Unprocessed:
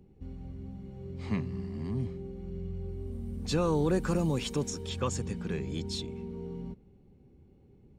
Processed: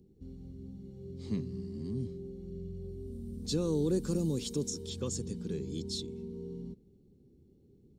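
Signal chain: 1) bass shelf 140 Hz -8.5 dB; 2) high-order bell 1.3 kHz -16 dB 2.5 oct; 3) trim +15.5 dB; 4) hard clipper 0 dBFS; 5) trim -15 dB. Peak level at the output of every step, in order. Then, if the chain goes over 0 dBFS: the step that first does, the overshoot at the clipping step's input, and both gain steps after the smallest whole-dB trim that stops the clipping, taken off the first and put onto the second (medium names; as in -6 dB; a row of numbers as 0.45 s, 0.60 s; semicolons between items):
-18.5 dBFS, -21.0 dBFS, -5.5 dBFS, -5.5 dBFS, -20.5 dBFS; nothing clips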